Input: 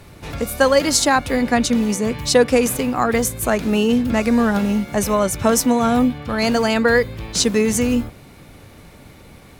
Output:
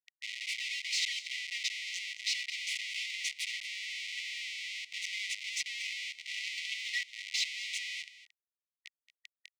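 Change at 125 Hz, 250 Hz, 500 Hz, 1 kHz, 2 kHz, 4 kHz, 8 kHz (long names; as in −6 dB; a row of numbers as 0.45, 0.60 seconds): below −40 dB, below −40 dB, below −40 dB, below −40 dB, −11.5 dB, −7.5 dB, −17.5 dB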